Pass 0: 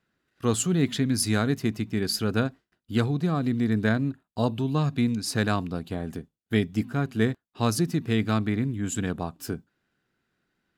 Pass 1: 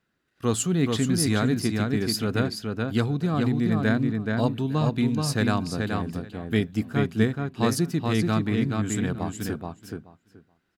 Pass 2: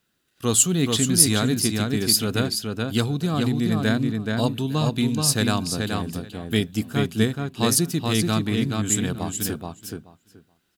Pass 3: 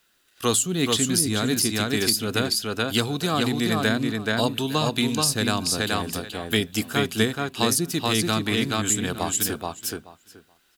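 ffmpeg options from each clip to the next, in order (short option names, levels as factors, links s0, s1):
-filter_complex "[0:a]asplit=2[s0][s1];[s1]adelay=428,lowpass=f=4400:p=1,volume=0.668,asplit=2[s2][s3];[s3]adelay=428,lowpass=f=4400:p=1,volume=0.16,asplit=2[s4][s5];[s5]adelay=428,lowpass=f=4400:p=1,volume=0.16[s6];[s0][s2][s4][s6]amix=inputs=4:normalize=0"
-af "aexciter=amount=3:drive=3.7:freq=2800,volume=1.12"
-filter_complex "[0:a]equalizer=f=140:w=0.48:g=-14,acrossover=split=380[s0][s1];[s1]acompressor=threshold=0.0355:ratio=8[s2];[s0][s2]amix=inputs=2:normalize=0,volume=2.66"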